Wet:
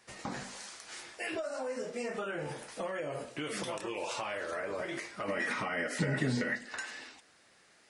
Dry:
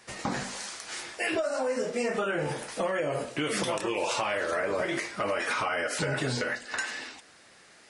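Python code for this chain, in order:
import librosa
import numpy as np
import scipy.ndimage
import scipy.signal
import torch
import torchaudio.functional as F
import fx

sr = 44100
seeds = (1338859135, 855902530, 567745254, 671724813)

y = fx.small_body(x, sr, hz=(200.0, 1900.0), ring_ms=25, db=14, at=(5.28, 6.69))
y = y * librosa.db_to_amplitude(-8.0)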